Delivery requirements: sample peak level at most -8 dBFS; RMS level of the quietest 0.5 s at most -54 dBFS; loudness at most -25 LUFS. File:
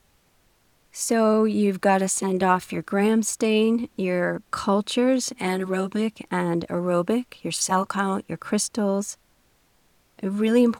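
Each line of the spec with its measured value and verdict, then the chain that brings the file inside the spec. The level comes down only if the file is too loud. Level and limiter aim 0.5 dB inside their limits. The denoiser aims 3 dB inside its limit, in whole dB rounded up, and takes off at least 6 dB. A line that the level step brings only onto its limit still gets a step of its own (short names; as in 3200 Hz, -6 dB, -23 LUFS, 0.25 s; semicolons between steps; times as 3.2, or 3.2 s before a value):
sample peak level -5.5 dBFS: fail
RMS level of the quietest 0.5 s -63 dBFS: OK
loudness -23.5 LUFS: fail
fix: gain -2 dB; limiter -8.5 dBFS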